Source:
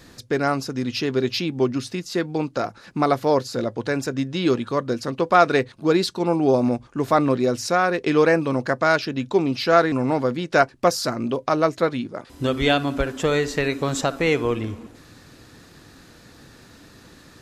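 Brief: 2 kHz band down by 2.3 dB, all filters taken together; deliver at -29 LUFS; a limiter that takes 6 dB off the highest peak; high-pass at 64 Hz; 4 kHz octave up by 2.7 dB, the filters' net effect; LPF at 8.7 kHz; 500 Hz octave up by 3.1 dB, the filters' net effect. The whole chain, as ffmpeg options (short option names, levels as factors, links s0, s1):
-af "highpass=64,lowpass=8700,equalizer=f=500:t=o:g=4,equalizer=f=2000:t=o:g=-4.5,equalizer=f=4000:t=o:g=4.5,volume=0.398,alimiter=limit=0.178:level=0:latency=1"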